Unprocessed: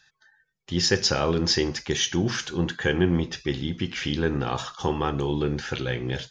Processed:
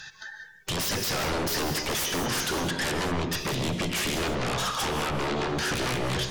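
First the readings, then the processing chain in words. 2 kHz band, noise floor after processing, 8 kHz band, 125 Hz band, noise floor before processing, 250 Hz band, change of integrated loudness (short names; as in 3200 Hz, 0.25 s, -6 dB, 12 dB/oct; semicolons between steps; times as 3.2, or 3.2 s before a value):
+0.5 dB, -49 dBFS, +1.5 dB, -4.5 dB, -70 dBFS, -5.0 dB, -2.0 dB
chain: compressor 3:1, threshold -37 dBFS, peak gain reduction 15.5 dB; sine folder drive 18 dB, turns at -21.5 dBFS; non-linear reverb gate 0.22 s rising, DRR 7 dB; gain -4 dB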